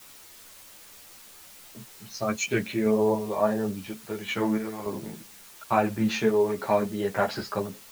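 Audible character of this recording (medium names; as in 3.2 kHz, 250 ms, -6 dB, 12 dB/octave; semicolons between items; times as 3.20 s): random-step tremolo, depth 65%; a quantiser's noise floor 8-bit, dither triangular; a shimmering, thickened sound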